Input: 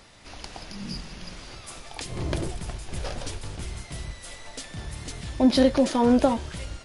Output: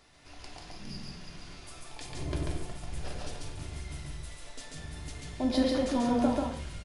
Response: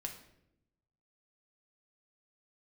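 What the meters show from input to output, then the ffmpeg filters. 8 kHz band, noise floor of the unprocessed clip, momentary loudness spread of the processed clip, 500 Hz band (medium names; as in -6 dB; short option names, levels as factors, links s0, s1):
-7.0 dB, -45 dBFS, 19 LU, -8.0 dB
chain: -filter_complex "[0:a]aecho=1:1:139.9|180.8:0.794|0.282[s0];[1:a]atrim=start_sample=2205,afade=t=out:st=0.2:d=0.01,atrim=end_sample=9261[s1];[s0][s1]afir=irnorm=-1:irlink=0,volume=0.447"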